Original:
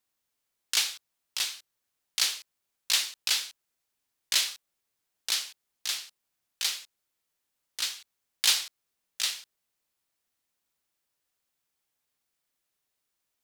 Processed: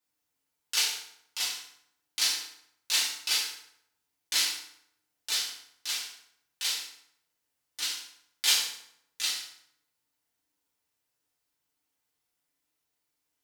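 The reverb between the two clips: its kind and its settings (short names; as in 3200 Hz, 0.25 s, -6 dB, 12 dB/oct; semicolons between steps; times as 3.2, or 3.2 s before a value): FDN reverb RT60 0.73 s, low-frequency decay 1.1×, high-frequency decay 0.75×, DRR -6 dB; gain -6.5 dB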